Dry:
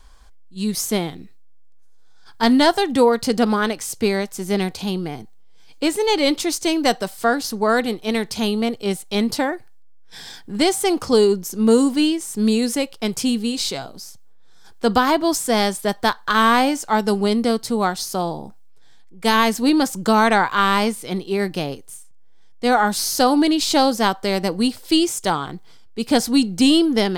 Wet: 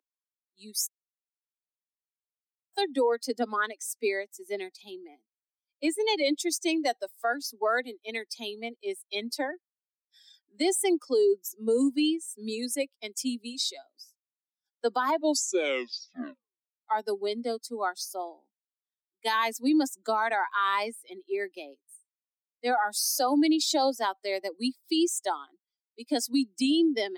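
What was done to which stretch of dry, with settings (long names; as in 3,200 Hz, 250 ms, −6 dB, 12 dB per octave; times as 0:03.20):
0:00.87–0:02.73: silence
0:15.13: tape stop 1.75 s
whole clip: spectral dynamics exaggerated over time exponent 2; Butterworth high-pass 260 Hz 72 dB per octave; brickwall limiter −17.5 dBFS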